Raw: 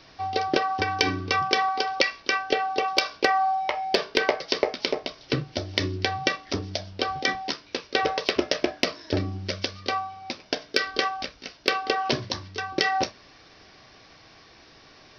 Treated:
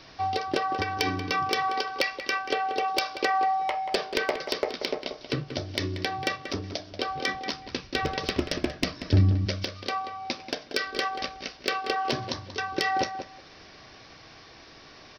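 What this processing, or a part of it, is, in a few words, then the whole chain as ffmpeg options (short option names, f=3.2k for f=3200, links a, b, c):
clipper into limiter: -filter_complex "[0:a]asoftclip=type=hard:threshold=-11dB,alimiter=limit=-17dB:level=0:latency=1:release=454,asplit=3[a][b][c];[a]afade=t=out:st=7.53:d=0.02[d];[b]asubboost=boost=6:cutoff=190,afade=t=in:st=7.53:d=0.02,afade=t=out:st=9.45:d=0.02[e];[c]afade=t=in:st=9.45:d=0.02[f];[d][e][f]amix=inputs=3:normalize=0,asplit=2[g][h];[h]adelay=184,lowpass=f=2.6k:p=1,volume=-9dB,asplit=2[i][j];[j]adelay=184,lowpass=f=2.6k:p=1,volume=0.18,asplit=2[k][l];[l]adelay=184,lowpass=f=2.6k:p=1,volume=0.18[m];[g][i][k][m]amix=inputs=4:normalize=0,volume=2dB"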